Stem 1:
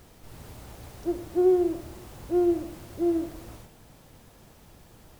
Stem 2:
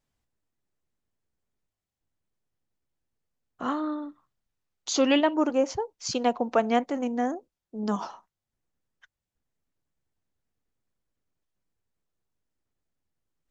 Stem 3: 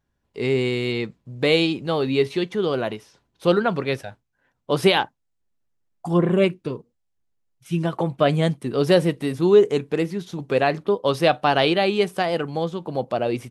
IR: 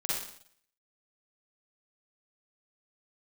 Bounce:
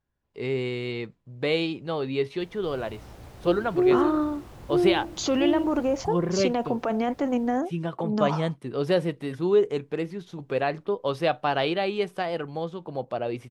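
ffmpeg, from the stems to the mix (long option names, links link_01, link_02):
-filter_complex "[0:a]adelay=2400,volume=0dB[link_01];[1:a]dynaudnorm=framelen=420:gausssize=9:maxgain=14dB,alimiter=limit=-12dB:level=0:latency=1:release=17,adelay=300,volume=-4.5dB[link_02];[2:a]equalizer=frequency=220:width=1.5:gain=-3,volume=-5.5dB[link_03];[link_01][link_02][link_03]amix=inputs=3:normalize=0,highshelf=frequency=5400:gain=-9.5"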